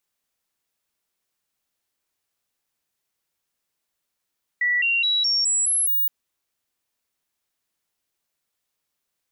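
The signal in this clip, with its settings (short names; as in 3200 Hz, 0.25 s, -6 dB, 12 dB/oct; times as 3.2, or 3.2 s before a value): stepped sine 1950 Hz up, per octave 2, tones 7, 0.21 s, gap 0.00 s -18 dBFS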